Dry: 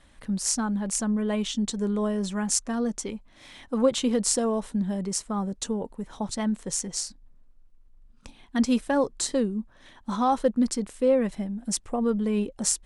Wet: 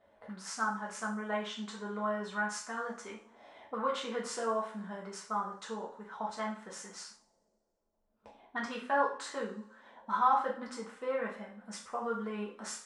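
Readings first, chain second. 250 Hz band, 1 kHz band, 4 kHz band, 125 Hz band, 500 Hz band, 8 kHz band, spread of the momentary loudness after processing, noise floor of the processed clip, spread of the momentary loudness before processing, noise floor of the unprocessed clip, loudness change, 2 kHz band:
-16.5 dB, -0.5 dB, -11.0 dB, under -15 dB, -9.5 dB, -17.5 dB, 15 LU, -77 dBFS, 9 LU, -55 dBFS, -9.0 dB, +2.0 dB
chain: two-slope reverb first 0.44 s, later 2 s, from -27 dB, DRR -4 dB; auto-wah 560–1300 Hz, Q 2.3, up, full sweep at -25 dBFS

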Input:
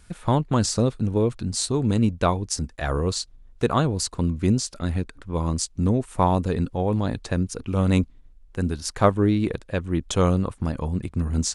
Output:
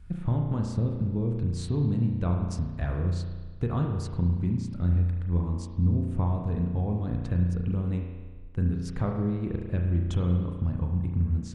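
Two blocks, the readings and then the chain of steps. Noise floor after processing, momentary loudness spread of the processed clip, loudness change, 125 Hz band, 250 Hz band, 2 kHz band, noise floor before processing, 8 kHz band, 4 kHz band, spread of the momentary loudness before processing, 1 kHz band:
-39 dBFS, 5 LU, -4.5 dB, -1.0 dB, -5.5 dB, under -10 dB, -51 dBFS, under -20 dB, under -15 dB, 7 LU, -14.0 dB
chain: tone controls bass +14 dB, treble -11 dB; compressor, threshold -16 dBFS, peak gain reduction 12 dB; spring tank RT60 1.4 s, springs 34 ms, chirp 75 ms, DRR 1.5 dB; gain -8.5 dB

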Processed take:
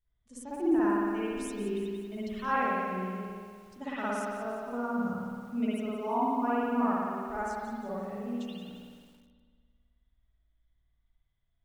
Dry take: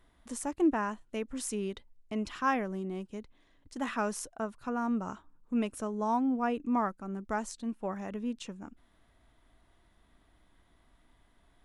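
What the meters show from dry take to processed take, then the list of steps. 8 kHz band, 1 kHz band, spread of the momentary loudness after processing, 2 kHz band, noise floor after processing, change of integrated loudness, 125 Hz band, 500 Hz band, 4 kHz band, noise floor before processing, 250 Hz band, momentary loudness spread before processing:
-8.0 dB, +2.5 dB, 14 LU, +2.0 dB, -75 dBFS, +1.5 dB, n/a, +2.5 dB, -1.5 dB, -67 dBFS, +1.5 dB, 14 LU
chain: per-bin expansion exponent 1.5; spring tank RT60 1.8 s, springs 54 ms, chirp 75 ms, DRR -10 dB; lo-fi delay 0.177 s, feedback 55%, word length 8-bit, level -11 dB; gain -6.5 dB

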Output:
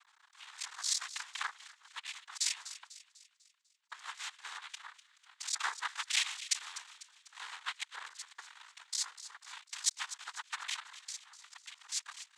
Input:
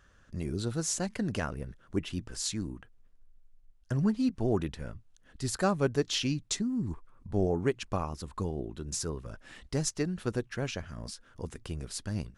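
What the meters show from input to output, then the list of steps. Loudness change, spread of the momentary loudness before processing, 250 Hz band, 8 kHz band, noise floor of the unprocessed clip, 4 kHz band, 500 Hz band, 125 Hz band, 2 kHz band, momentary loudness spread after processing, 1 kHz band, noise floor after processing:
-5.0 dB, 14 LU, under -40 dB, +0.5 dB, -61 dBFS, +1.5 dB, -37.0 dB, under -40 dB, +1.5 dB, 19 LU, -5.0 dB, -72 dBFS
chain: cycle switcher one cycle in 3, muted; steep high-pass 1300 Hz 72 dB/oct; noise vocoder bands 6; thin delay 0.248 s, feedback 47%, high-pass 2200 Hz, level -13.5 dB; gain +3.5 dB

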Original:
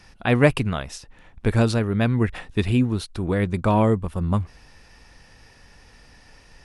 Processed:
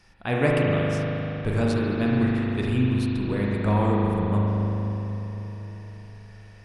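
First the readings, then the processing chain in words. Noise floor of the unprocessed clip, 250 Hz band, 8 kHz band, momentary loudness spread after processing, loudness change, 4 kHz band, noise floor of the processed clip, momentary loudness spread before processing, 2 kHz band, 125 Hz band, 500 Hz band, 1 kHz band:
-52 dBFS, -0.5 dB, n/a, 15 LU, -2.0 dB, -4.0 dB, -46 dBFS, 9 LU, -2.5 dB, -1.0 dB, -2.0 dB, -2.0 dB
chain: dark delay 0.253 s, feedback 73%, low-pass 620 Hz, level -14 dB; spring tank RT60 3.7 s, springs 39 ms, chirp 35 ms, DRR -4 dB; gain -7.5 dB

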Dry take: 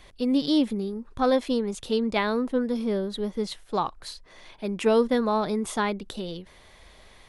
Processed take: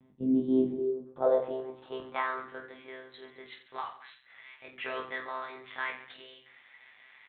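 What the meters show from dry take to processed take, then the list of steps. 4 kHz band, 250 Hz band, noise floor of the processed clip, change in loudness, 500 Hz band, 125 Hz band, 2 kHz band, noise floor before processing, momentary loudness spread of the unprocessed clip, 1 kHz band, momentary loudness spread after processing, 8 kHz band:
-14.0 dB, -8.0 dB, -61 dBFS, -6.0 dB, -7.0 dB, -11.5 dB, -3.0 dB, -53 dBFS, 13 LU, -8.0 dB, 22 LU, under -35 dB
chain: monotone LPC vocoder at 8 kHz 130 Hz; reverse bouncing-ball echo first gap 20 ms, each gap 1.4×, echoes 5; band-pass sweep 220 Hz -> 2000 Hz, 0.17–2.73

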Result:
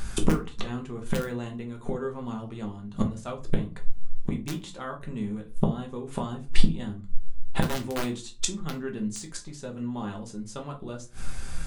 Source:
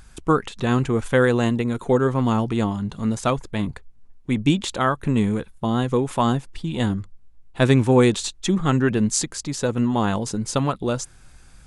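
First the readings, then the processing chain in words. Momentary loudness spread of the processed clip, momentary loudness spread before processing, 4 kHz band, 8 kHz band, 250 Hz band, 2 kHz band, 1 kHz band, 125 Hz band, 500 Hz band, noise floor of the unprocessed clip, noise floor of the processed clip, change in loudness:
10 LU, 8 LU, -7.5 dB, -8.0 dB, -10.0 dB, -11.5 dB, -12.5 dB, -10.0 dB, -12.5 dB, -49 dBFS, -43 dBFS, -11.0 dB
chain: wrapped overs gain 7 dB; flipped gate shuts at -21 dBFS, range -26 dB; shoebox room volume 130 m³, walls furnished, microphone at 1.2 m; gain +9 dB

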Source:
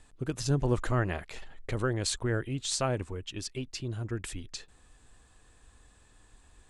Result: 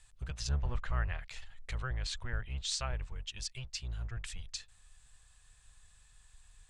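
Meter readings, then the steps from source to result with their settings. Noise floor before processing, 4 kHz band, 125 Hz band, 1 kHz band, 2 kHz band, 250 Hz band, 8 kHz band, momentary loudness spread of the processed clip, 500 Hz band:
-60 dBFS, -2.5 dB, -7.0 dB, -8.0 dB, -5.0 dB, -17.5 dB, -6.0 dB, 9 LU, -17.0 dB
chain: octaver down 1 oct, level +4 dB; treble ducked by the level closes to 2700 Hz, closed at -23 dBFS; passive tone stack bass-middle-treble 10-0-10; gain +1 dB

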